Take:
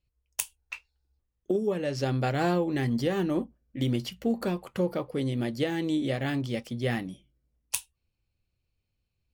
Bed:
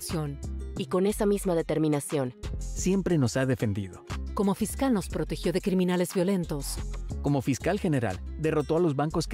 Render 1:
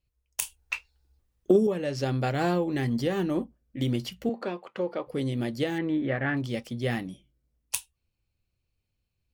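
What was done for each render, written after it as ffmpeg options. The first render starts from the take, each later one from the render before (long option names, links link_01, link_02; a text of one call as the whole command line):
ffmpeg -i in.wav -filter_complex "[0:a]asettb=1/sr,asplit=3[link_01][link_02][link_03];[link_01]atrim=end=0.424[link_04];[link_02]atrim=start=0.42:end=1.67,asetpts=PTS-STARTPTS,afade=type=in:duration=0.004:curve=qsin,afade=type=out:start_time=1.246:duration=0.004:curve=qsin,acontrast=89[link_05];[link_03]atrim=start=1.666[link_06];[link_04][link_05]acrossfade=duration=0.004:curve1=hsin:curve2=qsin[link_07];[link_07][link_06]acrossfade=duration=0.004:curve1=qsin:curve2=hsin,asettb=1/sr,asplit=3[link_08][link_09][link_10];[link_08]atrim=end=4.294[link_11];[link_09]atrim=start=4.29:end=5.07,asetpts=PTS-STARTPTS,afade=type=in:duration=0.004:curve=qsin,afade=type=out:start_time=0.776:duration=0.004:curve=qsin,highpass=320,lowpass=3600[link_12];[link_10]atrim=start=5.066[link_13];[link_11][link_12]acrossfade=duration=0.004:curve1=hsin:curve2=qsin[link_14];[link_14][link_13]acrossfade=duration=0.004:curve1=qsin:curve2=hsin,asettb=1/sr,asplit=3[link_15][link_16][link_17];[link_15]atrim=end=5.784[link_18];[link_16]atrim=start=5.78:end=6.37,asetpts=PTS-STARTPTS,afade=type=in:duration=0.004:curve=qsin,afade=type=out:start_time=0.586:duration=0.004:curve=qsin,lowpass=frequency=1700:width_type=q:width=2.4[link_19];[link_17]atrim=start=6.366[link_20];[link_18][link_19]acrossfade=duration=0.004:curve1=hsin:curve2=qsin[link_21];[link_21][link_20]acrossfade=duration=0.004:curve1=qsin:curve2=hsin" out.wav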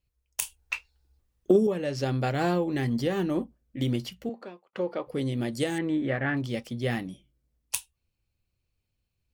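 ffmpeg -i in.wav -filter_complex "[0:a]asettb=1/sr,asplit=3[link_01][link_02][link_03];[link_01]atrim=end=5.524[link_04];[link_02]atrim=start=5.52:end=6.2,asetpts=PTS-STARTPTS,afade=type=in:duration=0.004:curve=qsin,afade=type=out:start_time=0.676:duration=0.004:curve=qsin,equalizer=frequency=8600:width=1.5:gain=14.5[link_05];[link_03]atrim=start=6.196[link_06];[link_04][link_05]acrossfade=duration=0.004:curve1=hsin:curve2=qsin[link_07];[link_07][link_06]acrossfade=duration=0.004:curve1=qsin:curve2=hsin,asplit=2[link_08][link_09];[link_08]atrim=end=4.73,asetpts=PTS-STARTPTS,afade=type=out:start_time=3.94:duration=0.79[link_10];[link_09]atrim=start=4.73,asetpts=PTS-STARTPTS,afade=type=in:duration=0.004:curve=hsin[link_11];[link_10][link_11]concat=n=2:v=0:a=1" out.wav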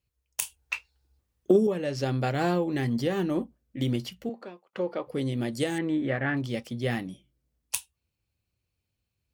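ffmpeg -i in.wav -af "highpass=57" out.wav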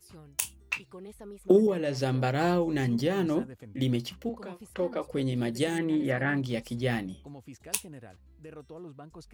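ffmpeg -i in.wav -i bed.wav -filter_complex "[1:a]volume=-20dB[link_01];[0:a][link_01]amix=inputs=2:normalize=0" out.wav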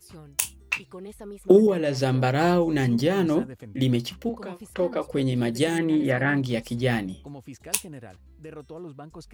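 ffmpeg -i in.wav -af "volume=5dB" out.wav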